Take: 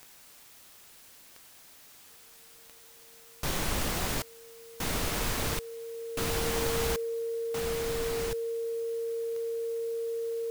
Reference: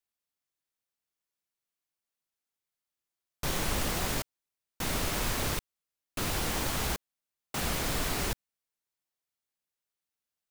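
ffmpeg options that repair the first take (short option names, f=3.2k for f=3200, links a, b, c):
-af "adeclick=t=4,bandreject=f=460:w=30,afwtdn=0.002,asetnsamples=n=441:p=0,asendcmd='7.32 volume volume 5dB',volume=0dB"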